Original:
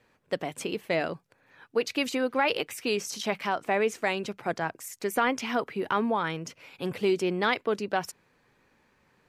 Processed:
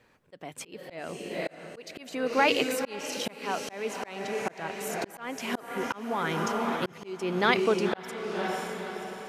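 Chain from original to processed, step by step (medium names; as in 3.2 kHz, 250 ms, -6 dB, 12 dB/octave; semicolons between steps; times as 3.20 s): echo that smears into a reverb 536 ms, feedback 49%, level -5.5 dB; slow attack 468 ms; trim +2.5 dB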